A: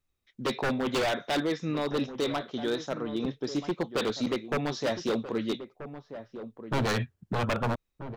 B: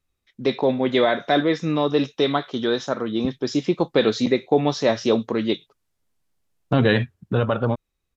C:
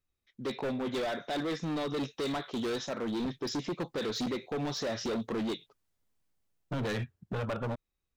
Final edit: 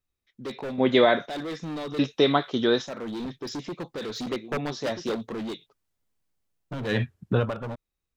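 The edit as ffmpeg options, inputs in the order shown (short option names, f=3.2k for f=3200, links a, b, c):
-filter_complex "[1:a]asplit=3[a][b][c];[2:a]asplit=5[d][e][f][g][h];[d]atrim=end=0.782[i];[a]atrim=start=0.778:end=1.262[j];[e]atrim=start=1.258:end=1.992[k];[b]atrim=start=1.988:end=2.822[l];[f]atrim=start=2.818:end=4.292[m];[0:a]atrim=start=4.288:end=5.152[n];[g]atrim=start=5.148:end=7.09[o];[c]atrim=start=6.85:end=7.55[p];[h]atrim=start=7.31[q];[i][j]acrossfade=d=0.004:c1=hsin:c2=hsin[r];[r][k]acrossfade=d=0.004:c1=hsin:c2=hsin[s];[s][l]acrossfade=d=0.004:c1=hsin:c2=hsin[t];[t][m]acrossfade=d=0.004:c1=hsin:c2=hsin[u];[u][n]acrossfade=d=0.004:c1=hsin:c2=hsin[v];[v][o]acrossfade=d=0.004:c1=hsin:c2=hsin[w];[w][p]acrossfade=d=0.24:c1=tri:c2=tri[x];[x][q]acrossfade=d=0.24:c1=tri:c2=tri"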